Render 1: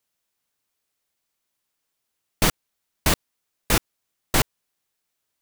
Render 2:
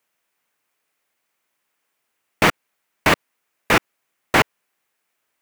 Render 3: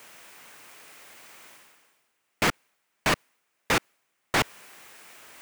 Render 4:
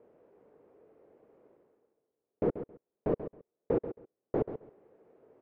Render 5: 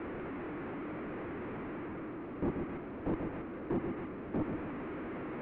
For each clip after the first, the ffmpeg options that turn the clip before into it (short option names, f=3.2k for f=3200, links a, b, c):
-filter_complex "[0:a]highshelf=f=3k:t=q:w=1.5:g=-6,acrossover=split=5600[a][b];[b]acompressor=threshold=-38dB:ratio=4:attack=1:release=60[c];[a][c]amix=inputs=2:normalize=0,highpass=f=310:p=1,volume=8.5dB"
-af "equalizer=f=13k:w=2.5:g=-8.5,areverse,acompressor=mode=upward:threshold=-28dB:ratio=2.5,areverse,volume=20dB,asoftclip=hard,volume=-20dB"
-filter_complex "[0:a]lowpass=f=450:t=q:w=3.4,asplit=2[a][b];[b]aecho=0:1:135|270:0.282|0.0507[c];[a][c]amix=inputs=2:normalize=0,volume=-6dB"
-af "aeval=exprs='val(0)+0.5*0.0224*sgn(val(0))':c=same,highpass=f=150:t=q:w=0.5412,highpass=f=150:t=q:w=1.307,lowpass=f=2.5k:t=q:w=0.5176,lowpass=f=2.5k:t=q:w=0.7071,lowpass=f=2.5k:t=q:w=1.932,afreqshift=-130,asoftclip=type=tanh:threshold=-26dB,volume=-1.5dB"